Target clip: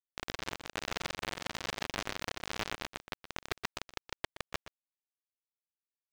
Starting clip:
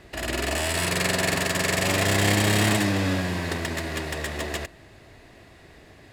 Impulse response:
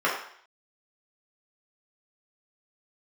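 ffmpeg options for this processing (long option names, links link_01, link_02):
-af "aemphasis=mode=reproduction:type=50fm,aeval=exprs='sgn(val(0))*max(abs(val(0))-0.0075,0)':channel_layout=same,bass=frequency=250:gain=-6,treble=frequency=4000:gain=-3,acompressor=threshold=-28dB:ratio=16,acrusher=bits=3:mix=0:aa=0.000001,adynamicsmooth=sensitivity=5:basefreq=1200,asoftclip=type=tanh:threshold=-25.5dB,lowpass=7900,acrusher=bits=4:mode=log:mix=0:aa=0.000001,aecho=1:1:121:0.211,volume=8dB"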